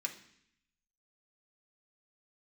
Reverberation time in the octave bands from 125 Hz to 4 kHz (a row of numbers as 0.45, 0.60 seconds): 1.0, 0.90, 0.65, 0.70, 0.85, 0.80 seconds